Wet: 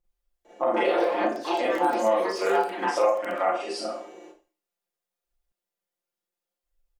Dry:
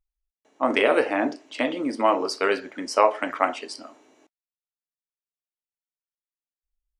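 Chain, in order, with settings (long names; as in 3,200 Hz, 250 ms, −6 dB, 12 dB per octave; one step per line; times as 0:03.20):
parametric band 500 Hz +10.5 dB 1.5 octaves
four-comb reverb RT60 0.38 s, combs from 32 ms, DRR −6.5 dB
delay with pitch and tempo change per echo 274 ms, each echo +5 semitones, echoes 2, each echo −6 dB
downward compressor 3 to 1, threshold −24 dBFS, peak gain reduction 19 dB
comb filter 5.7 ms, depth 93%
0:00.91–0:03.48: surface crackle 12 per second −22 dBFS
level −4.5 dB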